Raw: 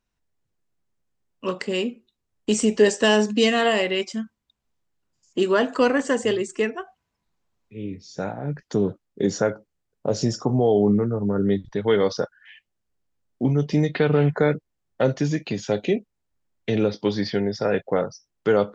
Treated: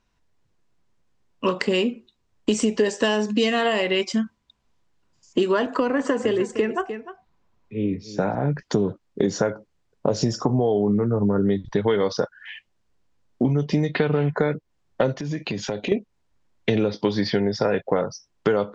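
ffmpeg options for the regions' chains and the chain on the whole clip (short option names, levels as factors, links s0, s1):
-filter_complex "[0:a]asettb=1/sr,asplit=3[s0][s1][s2];[s0]atrim=end=5.664[s3];[s1]atrim=start=5.66:end=8.35,asetpts=PTS-STARTPTS,afade=t=in:d=0.004:c=qsin,afade=t=out:st=2.686:d=0.004:c=qsin,equalizer=f=7400:w=0.33:g=-6.5,acrossover=split=93|300[s4][s5][s6];[s4]acompressor=threshold=0.00112:ratio=4[s7];[s5]acompressor=threshold=0.0355:ratio=4[s8];[s6]acompressor=threshold=0.0631:ratio=4[s9];[s7][s8][s9]amix=inputs=3:normalize=0,aecho=1:1:302:0.178,atrim=end_sample=118629[s10];[s2]atrim=start=8.346[s11];[s3][s10]acrossfade=d=0.004:c1=hsin:c2=qsin[s12];[s12][s11]acrossfade=d=0.004:c1=qsin:c2=hsin,asettb=1/sr,asplit=3[s13][s14][s15];[s13]atrim=end=15.144[s16];[s14]atrim=start=15.14:end=15.92,asetpts=PTS-STARTPTS,afade=t=in:d=0.004:c=qsin,afade=t=out:st=0.776:d=0.004:c=qsin,highshelf=f=5700:g=-4.5,acompressor=threshold=0.02:ratio=4:attack=3.2:release=140:knee=1:detection=peak[s17];[s15]atrim=start=15.916[s18];[s16][s17]acrossfade=d=0.004:c1=hsin:c2=qsin[s19];[s19][s18]acrossfade=d=0.004:c1=qsin:c2=hsin,lowpass=6700,equalizer=f=1000:w=7.1:g=4.5,acompressor=threshold=0.0447:ratio=6,volume=2.82"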